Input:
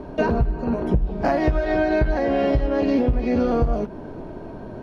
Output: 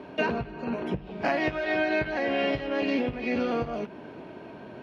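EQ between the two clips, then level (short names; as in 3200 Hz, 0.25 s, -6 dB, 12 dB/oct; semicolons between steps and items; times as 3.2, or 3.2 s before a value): HPF 140 Hz 12 dB/oct; bell 2600 Hz +14 dB 1.4 oct; -7.5 dB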